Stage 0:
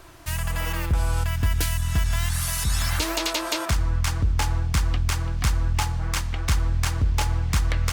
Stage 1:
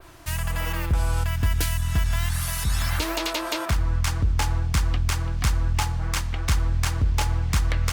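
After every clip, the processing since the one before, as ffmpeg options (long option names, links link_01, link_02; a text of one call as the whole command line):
ffmpeg -i in.wav -af "adynamicequalizer=threshold=0.00891:dfrequency=7100:dqfactor=0.73:tfrequency=7100:tqfactor=0.73:attack=5:release=100:ratio=0.375:range=2.5:mode=cutabove:tftype=bell" out.wav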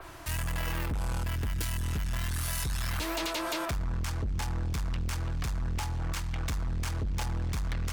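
ffmpeg -i in.wav -filter_complex "[0:a]acrossover=split=240|520|2400[link_01][link_02][link_03][link_04];[link_03]acompressor=mode=upward:threshold=-44dB:ratio=2.5[link_05];[link_01][link_02][link_05][link_04]amix=inputs=4:normalize=0,alimiter=limit=-15.5dB:level=0:latency=1:release=266,asoftclip=type=tanh:threshold=-28dB" out.wav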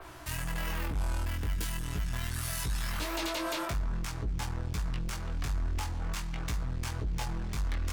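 ffmpeg -i in.wav -af "flanger=delay=16:depth=5.1:speed=0.44,volume=1.5dB" out.wav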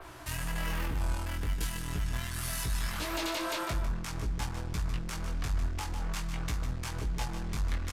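ffmpeg -i in.wav -af "aecho=1:1:151:0.355,aresample=32000,aresample=44100" out.wav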